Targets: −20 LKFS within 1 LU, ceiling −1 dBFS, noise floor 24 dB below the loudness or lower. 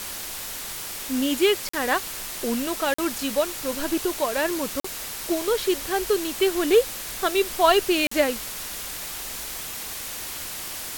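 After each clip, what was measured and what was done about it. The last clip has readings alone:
number of dropouts 4; longest dropout 44 ms; background noise floor −34 dBFS; target noise floor −49 dBFS; integrated loudness −25.0 LKFS; sample peak −5.5 dBFS; target loudness −20.0 LKFS
→ repair the gap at 0:01.69/0:02.94/0:04.80/0:08.07, 44 ms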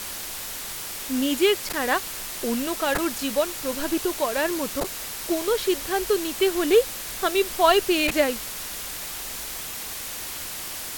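number of dropouts 0; background noise floor −34 dBFS; target noise floor −49 dBFS
→ noise reduction from a noise print 15 dB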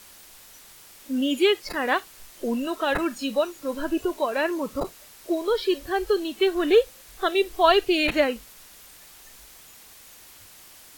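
background noise floor −49 dBFS; integrated loudness −24.5 LKFS; sample peak −6.0 dBFS; target loudness −20.0 LKFS
→ level +4.5 dB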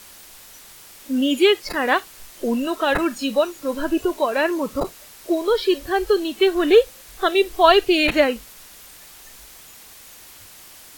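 integrated loudness −20.0 LKFS; sample peak −1.5 dBFS; background noise floor −45 dBFS

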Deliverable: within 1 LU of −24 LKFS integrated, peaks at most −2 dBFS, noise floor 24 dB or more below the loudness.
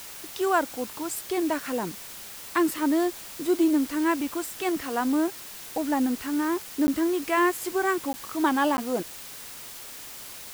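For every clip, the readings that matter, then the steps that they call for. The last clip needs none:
number of dropouts 3; longest dropout 10 ms; background noise floor −41 dBFS; target noise floor −51 dBFS; integrated loudness −26.5 LKFS; sample peak −10.5 dBFS; target loudness −24.0 LKFS
→ repair the gap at 0:06.87/0:08.13/0:08.77, 10 ms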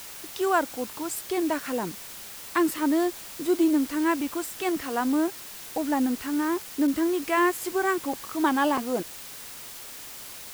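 number of dropouts 0; background noise floor −41 dBFS; target noise floor −51 dBFS
→ broadband denoise 10 dB, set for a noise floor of −41 dBFS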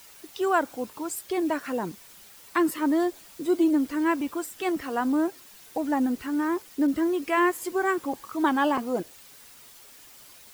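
background noise floor −50 dBFS; target noise floor −51 dBFS
→ broadband denoise 6 dB, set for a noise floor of −50 dBFS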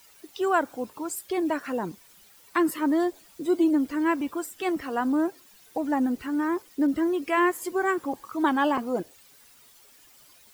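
background noise floor −55 dBFS; integrated loudness −27.0 LKFS; sample peak −10.5 dBFS; target loudness −24.0 LKFS
→ level +3 dB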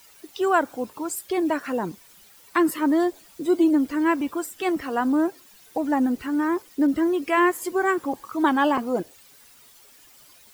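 integrated loudness −24.0 LKFS; sample peak −7.5 dBFS; background noise floor −52 dBFS

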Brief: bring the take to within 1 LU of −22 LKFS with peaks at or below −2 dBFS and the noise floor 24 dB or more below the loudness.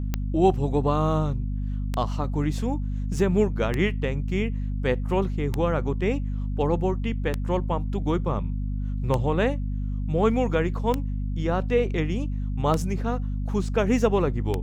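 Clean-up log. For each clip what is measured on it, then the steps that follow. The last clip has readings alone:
number of clicks 9; mains hum 50 Hz; hum harmonics up to 250 Hz; level of the hum −25 dBFS; integrated loudness −26.0 LKFS; sample peak −8.0 dBFS; target loudness −22.0 LKFS
→ click removal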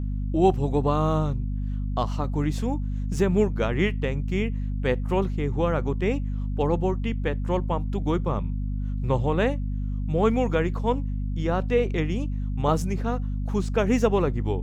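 number of clicks 0; mains hum 50 Hz; hum harmonics up to 250 Hz; level of the hum −25 dBFS
→ mains-hum notches 50/100/150/200/250 Hz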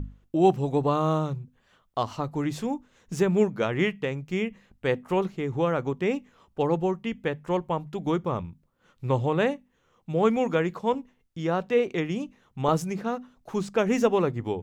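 mains hum none found; integrated loudness −27.0 LKFS; sample peak −8.0 dBFS; target loudness −22.0 LKFS
→ level +5 dB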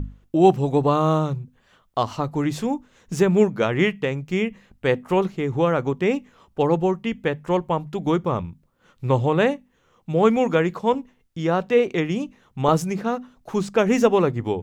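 integrated loudness −22.0 LKFS; sample peak −3.0 dBFS; background noise floor −63 dBFS

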